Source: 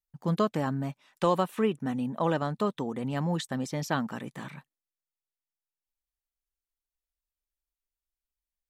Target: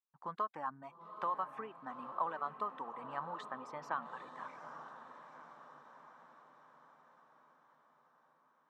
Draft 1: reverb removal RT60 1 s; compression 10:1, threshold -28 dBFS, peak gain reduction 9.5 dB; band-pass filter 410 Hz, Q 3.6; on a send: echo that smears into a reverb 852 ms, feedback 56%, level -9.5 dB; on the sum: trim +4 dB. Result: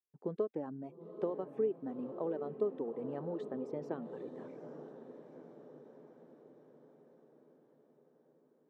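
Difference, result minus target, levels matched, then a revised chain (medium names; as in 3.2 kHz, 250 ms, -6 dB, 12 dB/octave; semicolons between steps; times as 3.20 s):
1 kHz band -15.0 dB
reverb removal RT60 1 s; compression 10:1, threshold -28 dBFS, peak gain reduction 9.5 dB; band-pass filter 1.1 kHz, Q 3.6; on a send: echo that smears into a reverb 852 ms, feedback 56%, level -9.5 dB; on the sum: trim +4 dB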